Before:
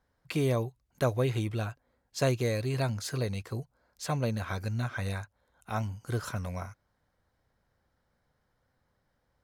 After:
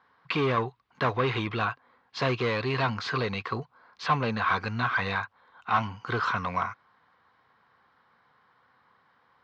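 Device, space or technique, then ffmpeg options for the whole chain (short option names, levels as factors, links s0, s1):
overdrive pedal into a guitar cabinet: -filter_complex "[0:a]asplit=2[s0][s1];[s1]highpass=f=720:p=1,volume=11.2,asoftclip=type=tanh:threshold=0.168[s2];[s0][s2]amix=inputs=2:normalize=0,lowpass=f=3500:p=1,volume=0.501,highpass=96,equalizer=f=330:t=q:w=4:g=-4,equalizer=f=590:t=q:w=4:g=-10,equalizer=f=1100:t=q:w=4:g=9,lowpass=f=4200:w=0.5412,lowpass=f=4200:w=1.3066"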